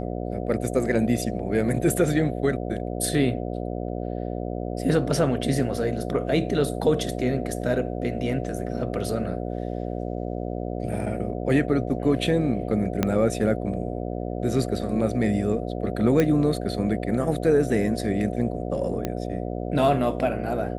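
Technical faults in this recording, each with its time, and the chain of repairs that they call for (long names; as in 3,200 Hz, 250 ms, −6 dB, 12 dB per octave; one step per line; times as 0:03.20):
mains buzz 60 Hz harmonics 12 −30 dBFS
0:13.03: click −8 dBFS
0:16.20: click −9 dBFS
0:19.05: click −13 dBFS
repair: click removal
hum removal 60 Hz, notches 12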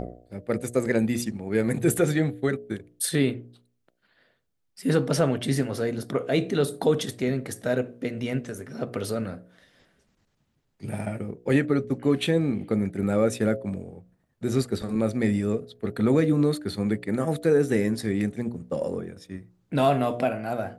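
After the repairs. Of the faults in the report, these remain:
0:13.03: click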